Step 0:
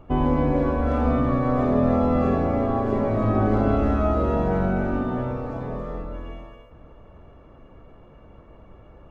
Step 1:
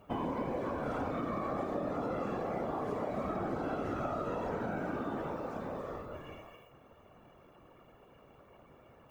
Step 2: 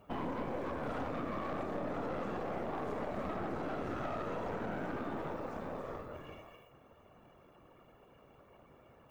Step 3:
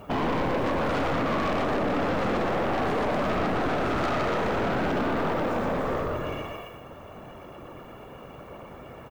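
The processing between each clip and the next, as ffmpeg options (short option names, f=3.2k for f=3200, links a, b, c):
-af "afftfilt=real='hypot(re,im)*cos(2*PI*random(0))':imag='hypot(re,im)*sin(2*PI*random(1))':win_size=512:overlap=0.75,aemphasis=mode=production:type=bsi,acompressor=threshold=-32dB:ratio=6"
-af "aeval=exprs='(tanh(50.1*val(0)+0.65)-tanh(0.65))/50.1':c=same,volume=1.5dB"
-filter_complex "[0:a]aecho=1:1:120:0.668,asplit=2[a][b];[b]aeval=exprs='0.0596*sin(PI/2*3.98*val(0)/0.0596)':c=same,volume=-10dB[c];[a][c]amix=inputs=2:normalize=0,volume=6.5dB"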